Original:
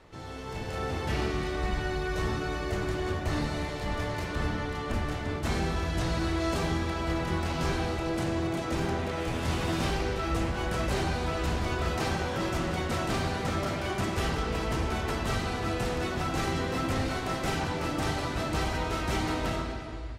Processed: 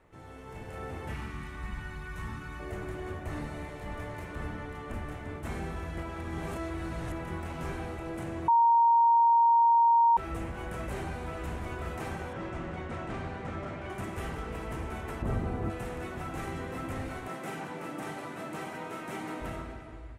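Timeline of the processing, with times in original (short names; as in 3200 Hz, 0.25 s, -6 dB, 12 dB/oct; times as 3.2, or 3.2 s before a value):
1.13–2.59 spectral gain 290–810 Hz -11 dB
5.98–7.12 reverse
8.48–10.17 bleep 931 Hz -11.5 dBFS
12.33–13.9 air absorption 96 m
15.22–15.7 tilt shelf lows +8 dB, about 1100 Hz
17.28–19.41 HPF 150 Hz 24 dB/oct
whole clip: EQ curve 2200 Hz 0 dB, 4700 Hz -12 dB, 9000 Hz +1 dB; gain -7 dB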